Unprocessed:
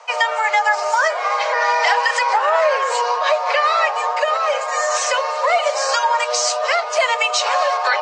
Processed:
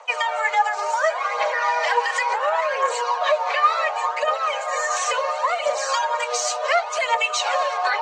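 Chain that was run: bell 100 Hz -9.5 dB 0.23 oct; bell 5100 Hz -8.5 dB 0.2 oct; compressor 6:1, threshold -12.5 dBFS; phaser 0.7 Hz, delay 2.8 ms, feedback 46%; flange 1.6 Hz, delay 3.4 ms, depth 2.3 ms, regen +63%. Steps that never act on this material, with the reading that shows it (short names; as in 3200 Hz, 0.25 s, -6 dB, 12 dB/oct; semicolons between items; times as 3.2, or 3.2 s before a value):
bell 100 Hz: input band starts at 400 Hz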